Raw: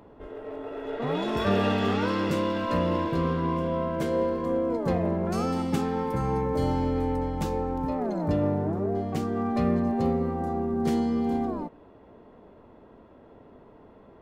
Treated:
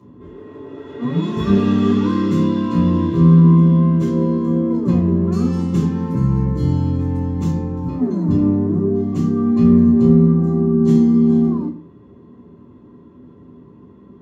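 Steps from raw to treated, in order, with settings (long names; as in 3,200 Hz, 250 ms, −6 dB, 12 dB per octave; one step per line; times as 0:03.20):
convolution reverb RT60 0.50 s, pre-delay 3 ms, DRR −5.5 dB
level −9.5 dB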